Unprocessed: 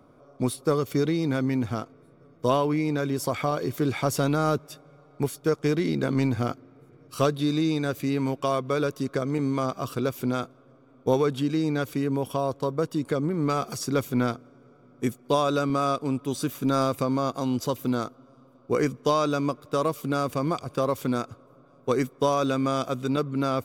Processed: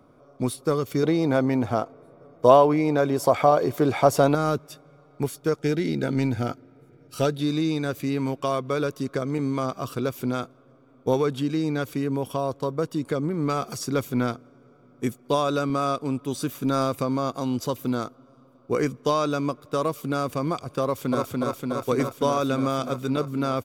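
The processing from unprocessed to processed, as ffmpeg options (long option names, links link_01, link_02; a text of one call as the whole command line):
ffmpeg -i in.wav -filter_complex "[0:a]asettb=1/sr,asplit=3[link_01][link_02][link_03];[link_01]atrim=end=1.034[link_04];[link_02]atrim=start=1.03:end=4.35,asetpts=PTS-STARTPTS,afade=type=in:duration=0.004:curve=qsin,afade=type=out:start_time=3.316:duration=0.004:curve=qsin,equalizer=frequency=690:width=0.96:gain=11.5[link_05];[link_03]atrim=start=4.346[link_06];[link_04][link_05]acrossfade=duration=0.004:curve1=hsin:curve2=qsin[link_07];[link_07][link_06]acrossfade=duration=0.004:curve1=qsin:curve2=hsin,asettb=1/sr,asplit=3[link_08][link_09][link_10];[link_08]atrim=end=5.574[link_11];[link_09]atrim=start=5.57:end=7.41,asetpts=PTS-STARTPTS,afade=type=in:duration=0.004:curve=qsin,afade=type=out:start_time=1.836:duration=0.004:curve=qsin,asuperstop=centerf=1100:order=12:qfactor=5.3[link_12];[link_10]atrim=start=7.406[link_13];[link_11][link_12]acrossfade=duration=0.004:curve1=hsin:curve2=qsin[link_14];[link_14][link_13]acrossfade=duration=0.004:curve1=qsin:curve2=hsin,asplit=2[link_15][link_16];[link_16]afade=type=in:start_time=20.83:duration=0.01,afade=type=out:start_time=21.26:duration=0.01,aecho=0:1:290|580|870|1160|1450|1740|2030|2320|2610|2900|3190|3480:0.841395|0.673116|0.538493|0.430794|0.344635|0.275708|0.220567|0.176453|0.141163|0.11293|0.0903441|0.0722753[link_17];[link_15][link_17]amix=inputs=2:normalize=0" out.wav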